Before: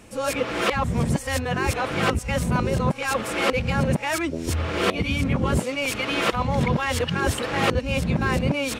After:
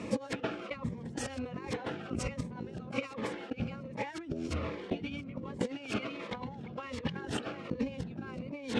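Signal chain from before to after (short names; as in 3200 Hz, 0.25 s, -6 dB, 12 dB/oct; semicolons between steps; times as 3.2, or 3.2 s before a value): HPF 190 Hz 12 dB/oct; tilt -1.5 dB/oct; limiter -17.5 dBFS, peak gain reduction 8 dB; negative-ratio compressor -34 dBFS, ratio -0.5; air absorption 96 m; cascading phaser falling 1.3 Hz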